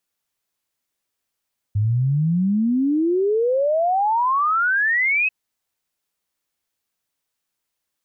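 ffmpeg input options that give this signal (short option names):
-f lavfi -i "aevalsrc='0.158*clip(min(t,3.54-t)/0.01,0,1)*sin(2*PI*100*3.54/log(2600/100)*(exp(log(2600/100)*t/3.54)-1))':d=3.54:s=44100"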